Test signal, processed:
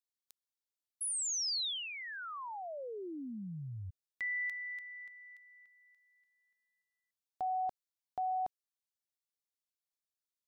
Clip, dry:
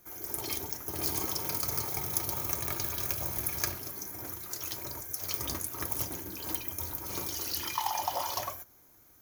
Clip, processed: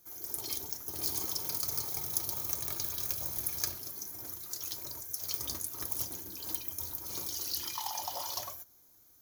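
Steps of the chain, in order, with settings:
high shelf with overshoot 3,100 Hz +6 dB, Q 1.5
level −7.5 dB

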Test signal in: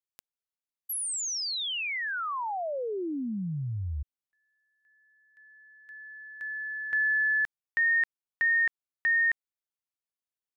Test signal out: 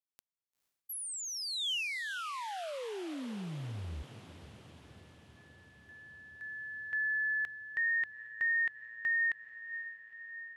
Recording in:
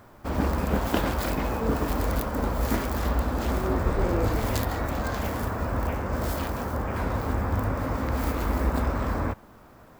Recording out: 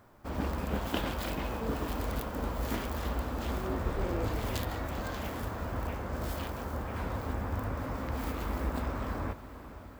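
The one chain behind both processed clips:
dynamic equaliser 3,100 Hz, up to +7 dB, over −47 dBFS, Q 1.9
feedback delay with all-pass diffusion 467 ms, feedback 69%, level −14 dB
level −8 dB

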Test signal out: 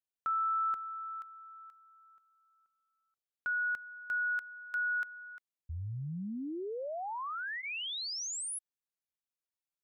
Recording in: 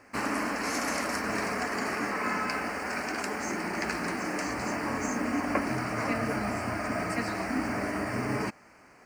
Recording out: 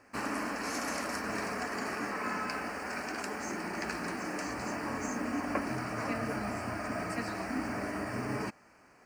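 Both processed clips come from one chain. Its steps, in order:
notch filter 2,100 Hz, Q 17
level −4.5 dB

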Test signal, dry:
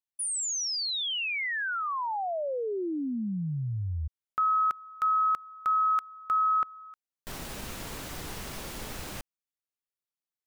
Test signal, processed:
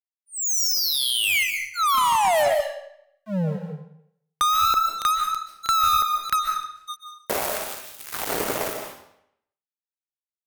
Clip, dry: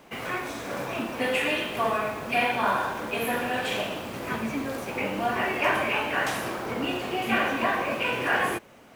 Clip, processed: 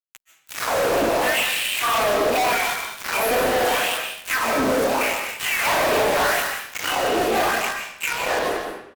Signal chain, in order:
fade-out on the ending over 2.69 s
tilt shelving filter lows +6.5 dB, about 810 Hz
automatic gain control gain up to 10 dB
notch filter 370 Hz, Q 12
auto-filter high-pass sine 0.8 Hz 390–4,000 Hz
multiband delay without the direct sound highs, lows 30 ms, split 3,300 Hz
fuzz pedal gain 25 dB, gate −32 dBFS
high-shelf EQ 11,000 Hz +11 dB
tape wow and flutter 76 cents
downward compressor 8 to 1, threshold −21 dBFS
comb and all-pass reverb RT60 0.73 s, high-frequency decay 0.9×, pre-delay 105 ms, DRR 4.5 dB
asymmetric clip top −17.5 dBFS
level +1.5 dB

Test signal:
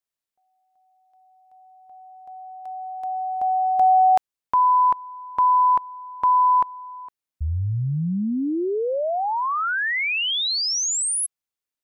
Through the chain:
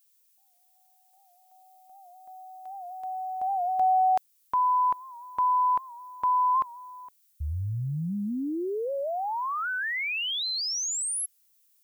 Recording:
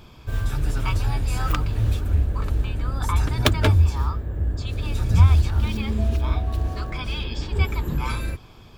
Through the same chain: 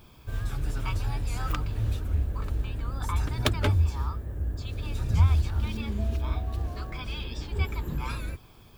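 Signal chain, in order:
background noise violet −59 dBFS
wow of a warped record 78 rpm, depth 100 cents
level −6.5 dB

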